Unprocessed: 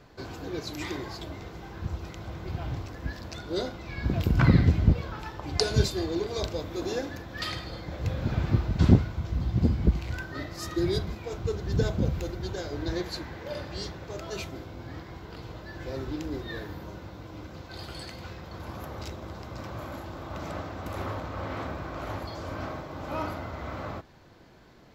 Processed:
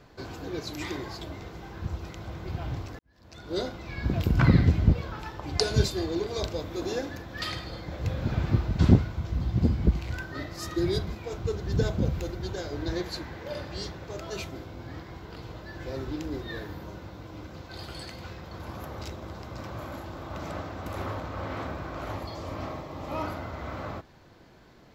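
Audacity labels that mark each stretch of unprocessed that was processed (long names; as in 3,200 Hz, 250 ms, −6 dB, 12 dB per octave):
2.990000	3.560000	fade in quadratic
22.120000	23.230000	notch filter 1,500 Hz, Q 7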